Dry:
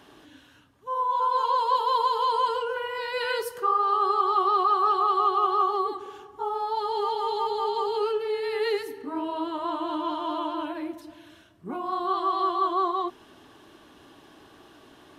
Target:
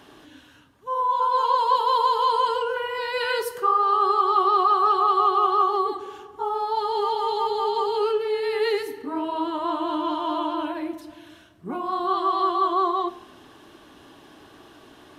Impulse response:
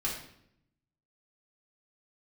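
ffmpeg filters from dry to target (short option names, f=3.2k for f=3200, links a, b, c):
-filter_complex "[0:a]asplit=2[a][b];[1:a]atrim=start_sample=2205,asetrate=37044,aresample=44100,adelay=23[c];[b][c]afir=irnorm=-1:irlink=0,volume=-20dB[d];[a][d]amix=inputs=2:normalize=0,volume=3dB"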